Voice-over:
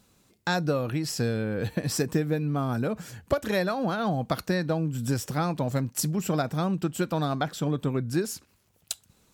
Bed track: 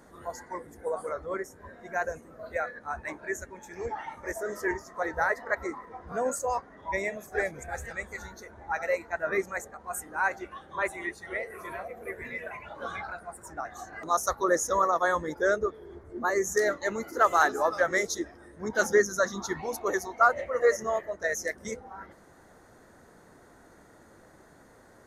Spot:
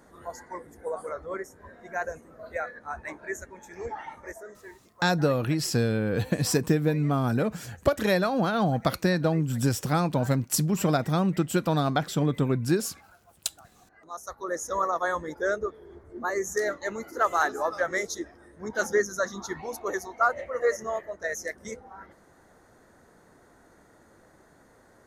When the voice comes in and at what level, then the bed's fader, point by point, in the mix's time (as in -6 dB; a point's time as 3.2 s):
4.55 s, +2.5 dB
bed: 4.15 s -1 dB
4.72 s -18.5 dB
13.83 s -18.5 dB
14.81 s -2 dB